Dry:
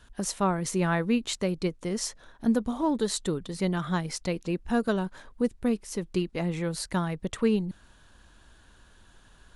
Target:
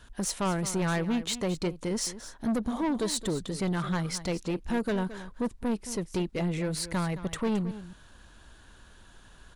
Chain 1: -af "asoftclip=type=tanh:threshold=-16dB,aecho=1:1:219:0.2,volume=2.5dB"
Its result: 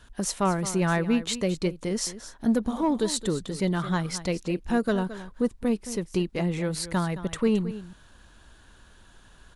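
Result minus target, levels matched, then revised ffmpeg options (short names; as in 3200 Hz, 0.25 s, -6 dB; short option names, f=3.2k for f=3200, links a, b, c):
soft clip: distortion -12 dB
-af "asoftclip=type=tanh:threshold=-26.5dB,aecho=1:1:219:0.2,volume=2.5dB"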